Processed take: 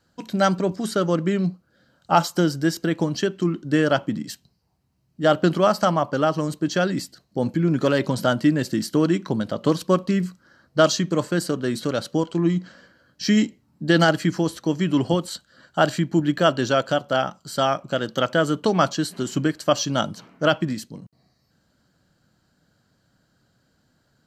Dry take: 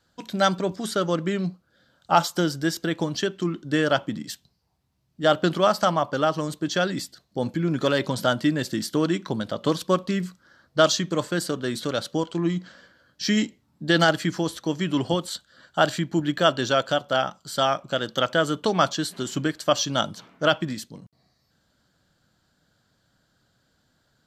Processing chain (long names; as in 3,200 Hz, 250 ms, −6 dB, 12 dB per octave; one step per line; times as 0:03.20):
parametric band 200 Hz +4.5 dB 2.7 octaves
notch filter 3,500 Hz, Q 9.2